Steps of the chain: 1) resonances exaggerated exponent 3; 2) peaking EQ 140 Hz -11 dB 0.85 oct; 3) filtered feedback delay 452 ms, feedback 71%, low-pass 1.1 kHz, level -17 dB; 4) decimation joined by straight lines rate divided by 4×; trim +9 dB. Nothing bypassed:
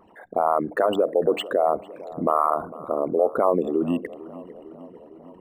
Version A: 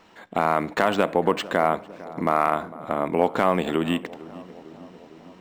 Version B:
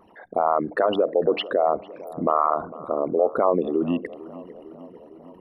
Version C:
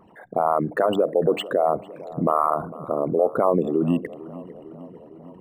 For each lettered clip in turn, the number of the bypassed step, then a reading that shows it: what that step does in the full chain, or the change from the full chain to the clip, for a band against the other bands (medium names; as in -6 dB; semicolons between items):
1, 2 kHz band +7.0 dB; 4, 4 kHz band +2.0 dB; 2, 125 Hz band +7.5 dB